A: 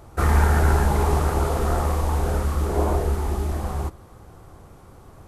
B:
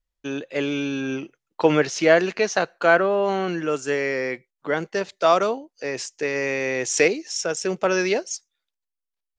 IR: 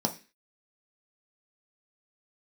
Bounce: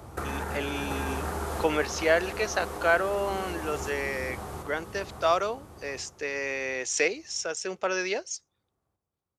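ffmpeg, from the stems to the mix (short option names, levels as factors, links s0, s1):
-filter_complex "[0:a]alimiter=limit=0.168:level=0:latency=1:release=348,highpass=59,acrossover=split=140|1100[s0][s1][s2];[s0]acompressor=threshold=0.00631:ratio=4[s3];[s1]acompressor=threshold=0.0141:ratio=4[s4];[s2]acompressor=threshold=0.00891:ratio=4[s5];[s3][s4][s5]amix=inputs=3:normalize=0,volume=1.26,asplit=2[s6][s7];[s7]volume=0.562[s8];[1:a]highpass=f=550:p=1,volume=0.596,asplit=2[s9][s10];[s10]apad=whole_len=232630[s11];[s6][s11]sidechaincompress=threshold=0.0447:ratio=8:attack=16:release=1430[s12];[s8]aecho=0:1:737|1474|2211|2948|3685|4422:1|0.42|0.176|0.0741|0.0311|0.0131[s13];[s12][s9][s13]amix=inputs=3:normalize=0"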